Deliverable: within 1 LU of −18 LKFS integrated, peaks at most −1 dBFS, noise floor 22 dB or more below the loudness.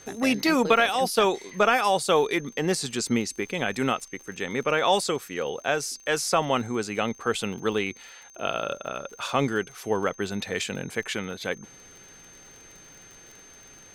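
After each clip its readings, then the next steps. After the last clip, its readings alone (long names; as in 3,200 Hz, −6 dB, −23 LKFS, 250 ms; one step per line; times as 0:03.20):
crackle rate 48 per second; interfering tone 6,300 Hz; level of the tone −49 dBFS; integrated loudness −26.0 LKFS; sample peak −7.0 dBFS; target loudness −18.0 LKFS
→ click removal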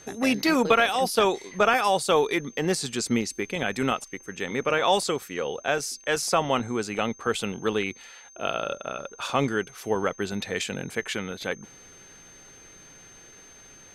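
crackle rate 0.14 per second; interfering tone 6,300 Hz; level of the tone −49 dBFS
→ notch filter 6,300 Hz, Q 30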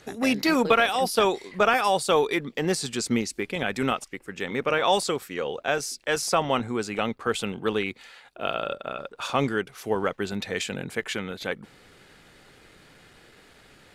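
interfering tone none found; integrated loudness −26.0 LKFS; sample peak −7.0 dBFS; target loudness −18.0 LKFS
→ level +8 dB
brickwall limiter −1 dBFS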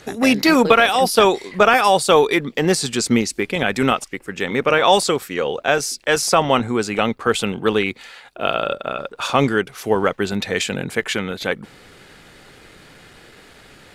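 integrated loudness −18.5 LKFS; sample peak −1.0 dBFS; background noise floor −47 dBFS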